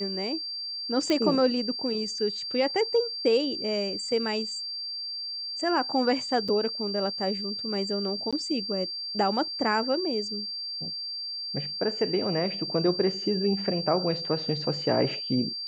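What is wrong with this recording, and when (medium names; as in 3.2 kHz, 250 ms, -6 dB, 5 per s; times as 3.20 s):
whine 4.7 kHz -32 dBFS
1.10 s: pop -14 dBFS
6.48–6.49 s: dropout 5.3 ms
8.31–8.33 s: dropout 16 ms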